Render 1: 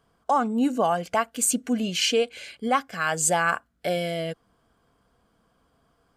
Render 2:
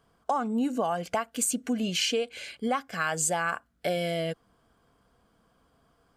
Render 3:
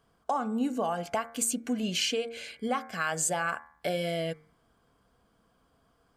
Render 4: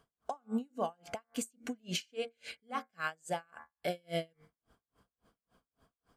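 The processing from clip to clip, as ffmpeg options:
-af "acompressor=threshold=-24dB:ratio=6"
-af "bandreject=f=77.14:t=h:w=4,bandreject=f=154.28:t=h:w=4,bandreject=f=231.42:t=h:w=4,bandreject=f=308.56:t=h:w=4,bandreject=f=385.7:t=h:w=4,bandreject=f=462.84:t=h:w=4,bandreject=f=539.98:t=h:w=4,bandreject=f=617.12:t=h:w=4,bandreject=f=694.26:t=h:w=4,bandreject=f=771.4:t=h:w=4,bandreject=f=848.54:t=h:w=4,bandreject=f=925.68:t=h:w=4,bandreject=f=1.00282k:t=h:w=4,bandreject=f=1.07996k:t=h:w=4,bandreject=f=1.1571k:t=h:w=4,bandreject=f=1.23424k:t=h:w=4,bandreject=f=1.31138k:t=h:w=4,bandreject=f=1.38852k:t=h:w=4,bandreject=f=1.46566k:t=h:w=4,bandreject=f=1.5428k:t=h:w=4,bandreject=f=1.61994k:t=h:w=4,bandreject=f=1.69708k:t=h:w=4,bandreject=f=1.77422k:t=h:w=4,bandreject=f=1.85136k:t=h:w=4,bandreject=f=1.9285k:t=h:w=4,bandreject=f=2.00564k:t=h:w=4,bandreject=f=2.08278k:t=h:w=4,bandreject=f=2.15992k:t=h:w=4,bandreject=f=2.23706k:t=h:w=4,bandreject=f=2.3142k:t=h:w=4,bandreject=f=2.39134k:t=h:w=4,volume=-1.5dB"
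-af "alimiter=limit=-21.5dB:level=0:latency=1:release=344,aeval=exprs='val(0)*pow(10,-39*(0.5-0.5*cos(2*PI*3.6*n/s))/20)':c=same,volume=1dB"

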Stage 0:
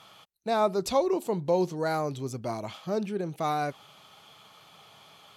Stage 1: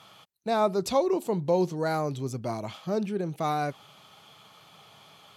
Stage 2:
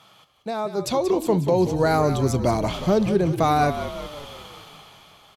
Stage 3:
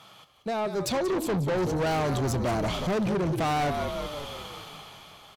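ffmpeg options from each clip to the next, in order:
-af "highpass=94,lowshelf=f=140:g=7.5"
-filter_complex "[0:a]alimiter=limit=-22.5dB:level=0:latency=1:release=452,dynaudnorm=f=200:g=9:m=12dB,asplit=2[a][b];[b]asplit=6[c][d][e][f][g][h];[c]adelay=182,afreqshift=-50,volume=-10dB[i];[d]adelay=364,afreqshift=-100,volume=-15.2dB[j];[e]adelay=546,afreqshift=-150,volume=-20.4dB[k];[f]adelay=728,afreqshift=-200,volume=-25.6dB[l];[g]adelay=910,afreqshift=-250,volume=-30.8dB[m];[h]adelay=1092,afreqshift=-300,volume=-36dB[n];[i][j][k][l][m][n]amix=inputs=6:normalize=0[o];[a][o]amix=inputs=2:normalize=0"
-af "asoftclip=type=tanh:threshold=-25.5dB,volume=1.5dB"

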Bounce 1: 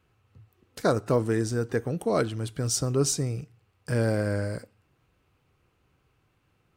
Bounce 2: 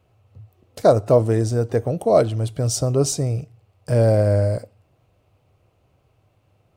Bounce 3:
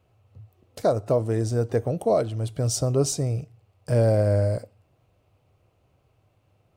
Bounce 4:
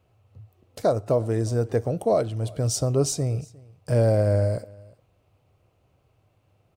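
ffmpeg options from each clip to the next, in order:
-af "equalizer=f=100:t=o:w=0.67:g=9,equalizer=f=630:t=o:w=0.67:g=12,equalizer=f=1.6k:t=o:w=0.67:g=-6,volume=2.5dB"
-af "alimiter=limit=-9dB:level=0:latency=1:release=435,volume=-3dB"
-af "aecho=1:1:355:0.0631"

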